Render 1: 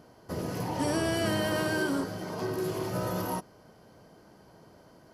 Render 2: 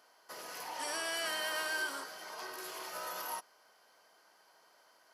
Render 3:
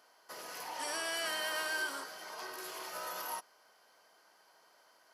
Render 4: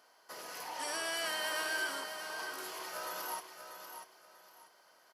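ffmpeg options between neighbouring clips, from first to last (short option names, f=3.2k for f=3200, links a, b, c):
-af "highpass=1.1k,volume=-1dB"
-af anull
-af "aecho=1:1:640|1280|1920:0.376|0.101|0.0274"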